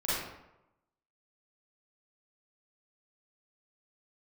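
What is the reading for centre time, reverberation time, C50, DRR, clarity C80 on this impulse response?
84 ms, 0.90 s, -3.0 dB, -11.0 dB, 1.5 dB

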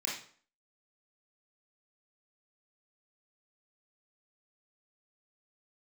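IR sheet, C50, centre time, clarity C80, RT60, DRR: 3.0 dB, 43 ms, 8.0 dB, 0.50 s, -5.0 dB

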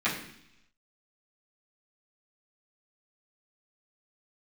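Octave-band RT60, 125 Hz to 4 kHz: 0.90, 0.90, 0.70, 0.75, 0.90, 1.0 s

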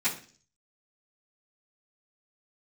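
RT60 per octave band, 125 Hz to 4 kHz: 0.65, 0.55, 0.50, 0.40, 0.45, 0.55 s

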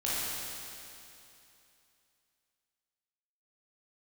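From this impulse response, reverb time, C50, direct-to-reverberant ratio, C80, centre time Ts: 2.8 s, -5.0 dB, -9.0 dB, -2.5 dB, 0.195 s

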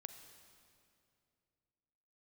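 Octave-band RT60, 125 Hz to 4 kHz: 3.1, 2.9, 2.7, 2.3, 2.2, 2.0 s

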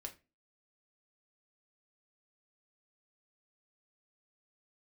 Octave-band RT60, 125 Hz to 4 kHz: 0.35, 0.40, 0.30, 0.25, 0.25, 0.20 s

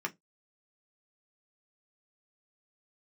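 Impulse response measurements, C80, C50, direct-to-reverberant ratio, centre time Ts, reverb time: 37.5 dB, 26.0 dB, 1.0 dB, 6 ms, not exponential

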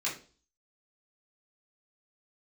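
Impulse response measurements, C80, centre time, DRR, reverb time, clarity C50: 14.5 dB, 26 ms, -6.5 dB, 0.40 s, 8.5 dB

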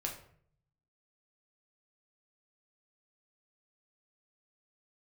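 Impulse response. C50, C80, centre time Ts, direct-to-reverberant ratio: 8.0 dB, 11.5 dB, 22 ms, 0.0 dB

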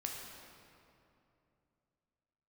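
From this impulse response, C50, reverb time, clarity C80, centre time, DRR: 1.5 dB, 2.8 s, 2.5 dB, 99 ms, -0.5 dB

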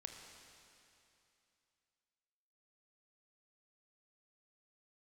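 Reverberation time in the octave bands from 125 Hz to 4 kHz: 2.9, 2.8, 2.7, 2.8, 2.8, 2.8 s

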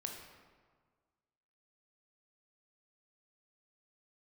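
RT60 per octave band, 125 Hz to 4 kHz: 1.8, 1.7, 1.6, 1.6, 1.3, 0.95 s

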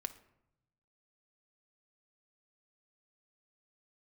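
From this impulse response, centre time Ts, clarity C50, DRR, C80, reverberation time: 5 ms, 14.0 dB, 10.5 dB, 17.5 dB, 0.85 s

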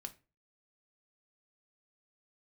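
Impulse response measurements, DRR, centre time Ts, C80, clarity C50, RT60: 5.5 dB, 5 ms, 23.5 dB, 17.5 dB, 0.30 s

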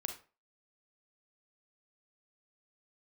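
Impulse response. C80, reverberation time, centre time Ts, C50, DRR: 14.5 dB, 0.35 s, 16 ms, 8.0 dB, 4.5 dB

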